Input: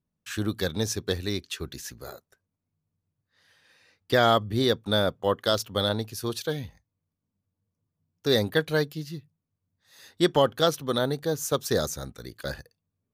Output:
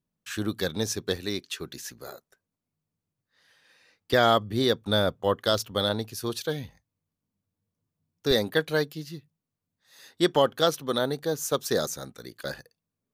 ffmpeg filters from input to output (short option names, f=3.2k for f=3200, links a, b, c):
-af "asetnsamples=n=441:p=0,asendcmd='1.16 equalizer g -13.5;4.13 equalizer g -6.5;4.81 equalizer g 1;5.71 equalizer g -5.5;8.31 equalizer g -15',equalizer=f=71:t=o:w=1.2:g=-7.5"